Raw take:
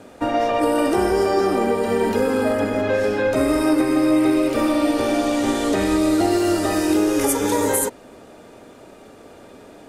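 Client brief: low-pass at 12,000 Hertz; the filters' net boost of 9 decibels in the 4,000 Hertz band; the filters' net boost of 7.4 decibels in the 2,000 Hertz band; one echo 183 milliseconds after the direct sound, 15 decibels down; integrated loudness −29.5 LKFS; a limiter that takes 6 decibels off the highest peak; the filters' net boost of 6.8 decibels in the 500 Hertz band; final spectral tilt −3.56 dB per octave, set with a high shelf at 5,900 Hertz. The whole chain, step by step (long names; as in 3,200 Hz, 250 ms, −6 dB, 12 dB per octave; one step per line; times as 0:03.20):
low-pass filter 12,000 Hz
parametric band 500 Hz +8 dB
parametric band 2,000 Hz +6.5 dB
parametric band 4,000 Hz +6 dB
high-shelf EQ 5,900 Hz +9 dB
brickwall limiter −8 dBFS
single-tap delay 183 ms −15 dB
level −13 dB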